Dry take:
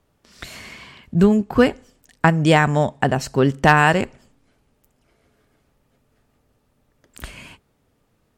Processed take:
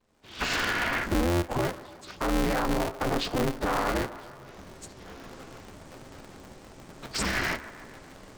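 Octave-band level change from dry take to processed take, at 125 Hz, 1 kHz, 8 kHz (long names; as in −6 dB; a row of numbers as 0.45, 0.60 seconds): −12.5, −9.5, −0.5 decibels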